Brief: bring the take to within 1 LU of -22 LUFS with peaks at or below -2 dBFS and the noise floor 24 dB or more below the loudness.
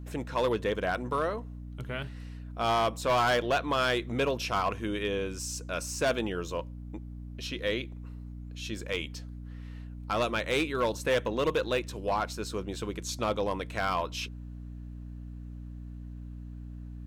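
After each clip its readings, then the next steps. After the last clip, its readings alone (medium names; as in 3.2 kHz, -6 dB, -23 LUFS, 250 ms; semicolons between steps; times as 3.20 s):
clipped samples 0.9%; clipping level -21.0 dBFS; hum 60 Hz; highest harmonic 300 Hz; hum level -39 dBFS; loudness -30.5 LUFS; peak level -21.0 dBFS; loudness target -22.0 LUFS
-> clip repair -21 dBFS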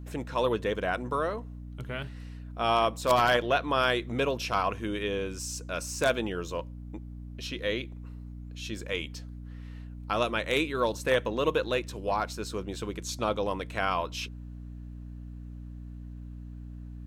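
clipped samples 0.0%; hum 60 Hz; highest harmonic 300 Hz; hum level -39 dBFS
-> de-hum 60 Hz, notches 5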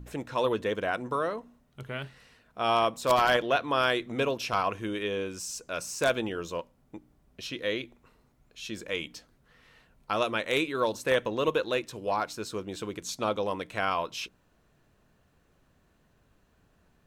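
hum not found; loudness -30.0 LUFS; peak level -11.0 dBFS; loudness target -22.0 LUFS
-> trim +8 dB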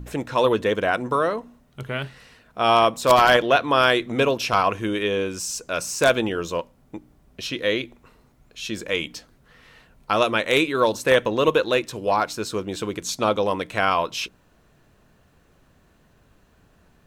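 loudness -22.0 LUFS; peak level -3.0 dBFS; noise floor -59 dBFS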